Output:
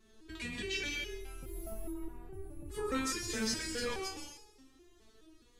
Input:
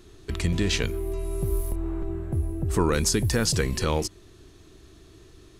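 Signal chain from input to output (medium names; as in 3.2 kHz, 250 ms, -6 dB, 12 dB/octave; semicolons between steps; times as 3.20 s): dynamic bell 2.4 kHz, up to +8 dB, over -45 dBFS, Q 0.87; in parallel at -1.5 dB: peak limiter -17.5 dBFS, peak gain reduction 11 dB; on the sum: plate-style reverb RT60 0.92 s, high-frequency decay 1×, pre-delay 110 ms, DRR 2 dB; resonator arpeggio 4.8 Hz 220–420 Hz; trim -3.5 dB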